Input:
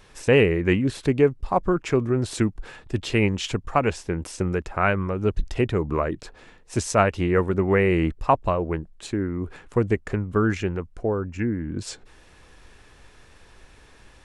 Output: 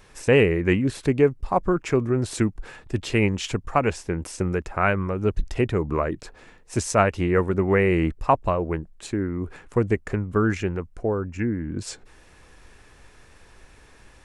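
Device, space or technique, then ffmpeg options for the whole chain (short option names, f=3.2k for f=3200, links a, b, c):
exciter from parts: -filter_complex "[0:a]asplit=2[a][b];[b]highpass=f=2.5k:w=0.5412,highpass=f=2.5k:w=1.3066,asoftclip=type=tanh:threshold=-19dB,highpass=2.1k,volume=-11dB[c];[a][c]amix=inputs=2:normalize=0"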